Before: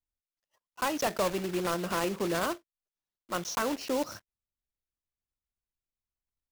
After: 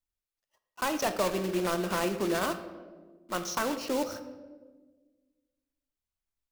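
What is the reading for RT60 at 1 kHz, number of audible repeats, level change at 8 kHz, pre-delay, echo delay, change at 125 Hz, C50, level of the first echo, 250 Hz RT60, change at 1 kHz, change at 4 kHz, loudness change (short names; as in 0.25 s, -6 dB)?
1.2 s, none, +0.5 dB, 3 ms, none, +0.5 dB, 11.0 dB, none, 2.0 s, +0.5 dB, +0.5 dB, +0.5 dB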